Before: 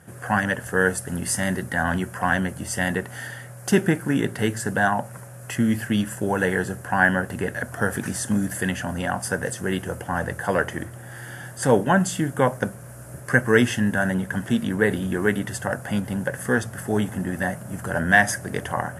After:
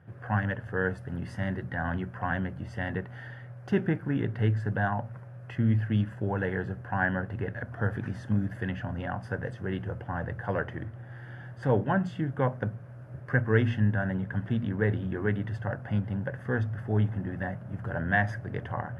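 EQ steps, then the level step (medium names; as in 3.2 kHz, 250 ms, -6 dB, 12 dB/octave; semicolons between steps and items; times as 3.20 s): distance through air 330 m; peaking EQ 110 Hz +14 dB 0.48 oct; hum notches 60/120/180/240 Hz; -7.5 dB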